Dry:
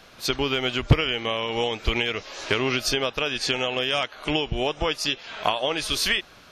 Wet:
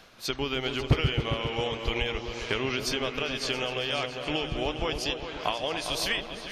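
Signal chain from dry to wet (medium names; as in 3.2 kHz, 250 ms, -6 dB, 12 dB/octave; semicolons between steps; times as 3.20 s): delay with an opening low-pass 135 ms, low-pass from 200 Hz, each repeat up 2 oct, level -3 dB; reverse; upward compressor, threshold -30 dBFS; reverse; trim -6 dB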